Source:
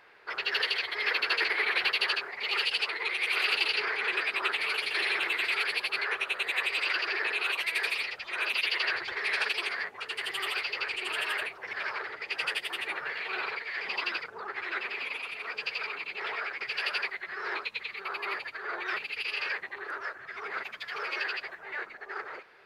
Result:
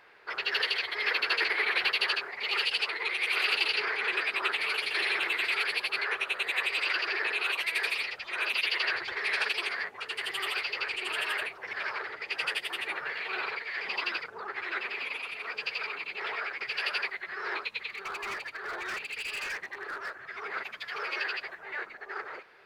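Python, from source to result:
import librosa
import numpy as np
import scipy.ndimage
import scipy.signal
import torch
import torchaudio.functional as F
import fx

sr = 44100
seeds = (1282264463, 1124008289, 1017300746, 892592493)

y = fx.clip_hard(x, sr, threshold_db=-32.0, at=(17.89, 20.18))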